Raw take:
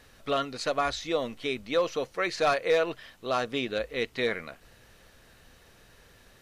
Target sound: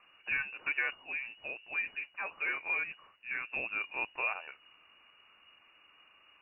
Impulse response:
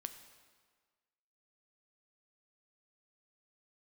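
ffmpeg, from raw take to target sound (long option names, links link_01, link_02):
-filter_complex "[0:a]asettb=1/sr,asplit=3[link_01][link_02][link_03];[link_01]atrim=end=0.944[link_04];[link_02]atrim=start=0.94:end=3.53,asetpts=PTS-STARTPTS,afade=type=in:duration=0.004:curve=qsin,afade=type=out:start_time=2.586:duration=0.004:curve=qsin,flanger=delay=1.1:depth=9.1:regen=-74:speed=1.6:shape=triangular[link_05];[link_03]atrim=start=3.526[link_06];[link_04][link_05]acrossfade=duration=0.004:curve1=hsin:curve2=qsin[link_07];[link_07][link_06]acrossfade=duration=0.004:curve1=qsin:curve2=hsin,lowpass=frequency=2500:width_type=q:width=0.5098,lowpass=frequency=2500:width_type=q:width=0.6013,lowpass=frequency=2500:width_type=q:width=0.9,lowpass=frequency=2500:width_type=q:width=2.563,afreqshift=-2900,volume=-5.5dB"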